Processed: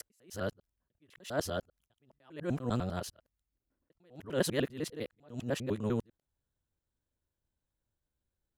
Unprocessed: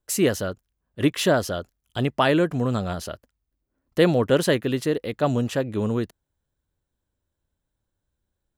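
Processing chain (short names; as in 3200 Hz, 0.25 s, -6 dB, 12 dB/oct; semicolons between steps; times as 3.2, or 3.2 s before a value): local time reversal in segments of 0.1 s; attack slew limiter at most 160 dB/s; gain -7 dB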